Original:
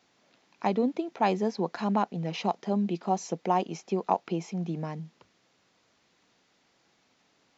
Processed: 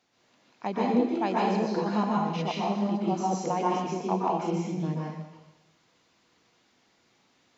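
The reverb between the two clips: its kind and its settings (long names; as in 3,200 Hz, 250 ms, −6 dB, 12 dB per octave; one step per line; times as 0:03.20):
dense smooth reverb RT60 0.98 s, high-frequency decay 1×, pre-delay 110 ms, DRR −5.5 dB
level −5 dB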